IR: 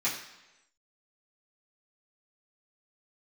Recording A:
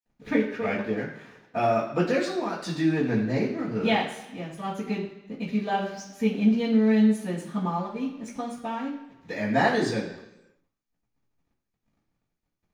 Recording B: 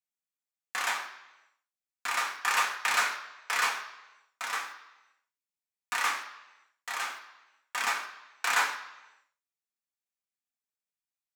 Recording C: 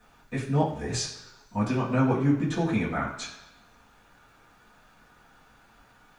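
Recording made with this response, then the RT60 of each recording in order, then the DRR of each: C; 1.0, 1.0, 1.0 s; -18.5, -1.0, -10.5 dB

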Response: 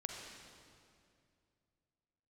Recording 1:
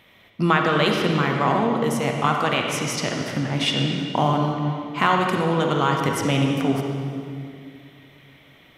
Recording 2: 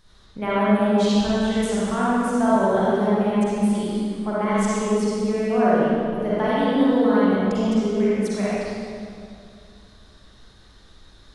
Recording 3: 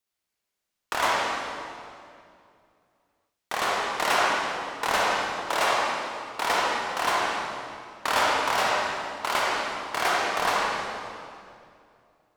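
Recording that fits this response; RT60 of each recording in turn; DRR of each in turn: 1; 2.4, 2.4, 2.4 s; 1.0, -10.0, -4.5 dB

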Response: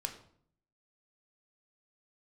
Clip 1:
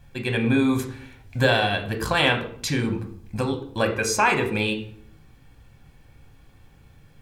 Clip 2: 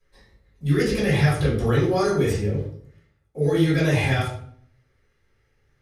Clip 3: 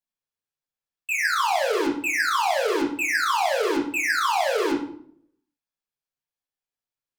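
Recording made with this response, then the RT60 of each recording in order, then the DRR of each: 1; 0.60, 0.60, 0.60 s; 4.0, -9.5, -3.0 dB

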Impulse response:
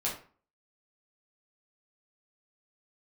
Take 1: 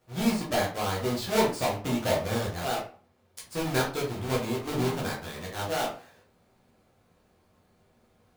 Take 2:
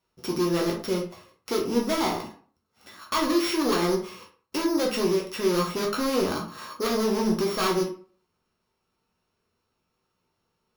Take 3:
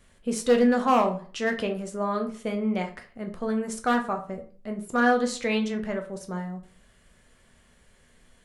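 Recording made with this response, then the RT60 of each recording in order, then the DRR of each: 1; 0.40, 0.40, 0.40 s; -6.0, -1.0, 3.5 dB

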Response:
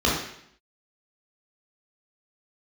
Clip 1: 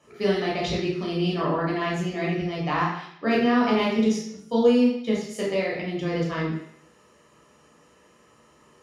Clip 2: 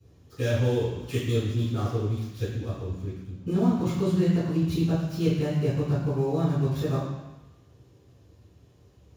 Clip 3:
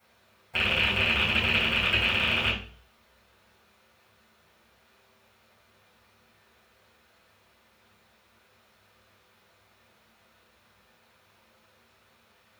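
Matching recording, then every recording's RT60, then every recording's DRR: 1; 0.70, 1.0, 0.45 s; -6.0, -18.0, -9.0 dB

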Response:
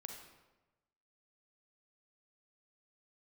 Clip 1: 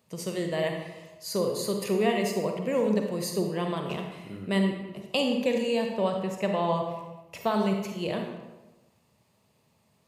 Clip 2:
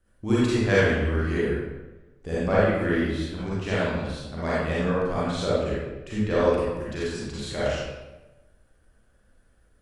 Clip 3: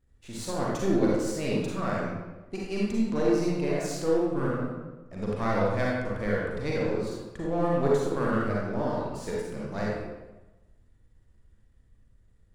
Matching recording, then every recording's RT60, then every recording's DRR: 1; 1.1, 1.1, 1.1 s; 2.5, -9.5, -5.0 dB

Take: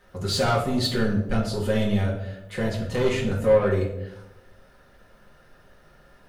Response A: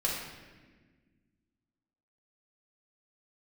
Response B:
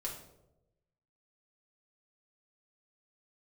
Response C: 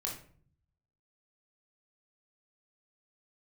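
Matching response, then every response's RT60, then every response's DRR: B; 1.4, 0.95, 0.50 s; -5.0, -3.5, -2.5 dB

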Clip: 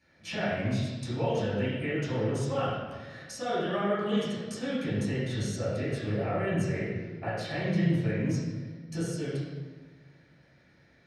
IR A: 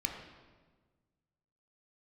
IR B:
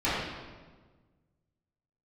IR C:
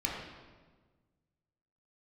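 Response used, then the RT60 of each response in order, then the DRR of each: B; 1.4, 1.4, 1.4 s; 2.0, -13.0, -3.0 dB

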